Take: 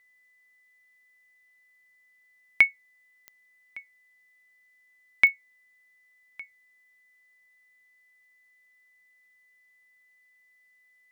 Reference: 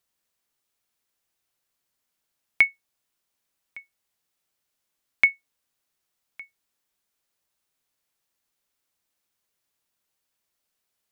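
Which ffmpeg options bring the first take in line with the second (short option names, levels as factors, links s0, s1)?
-af "adeclick=t=4,bandreject=f=2000:w=30"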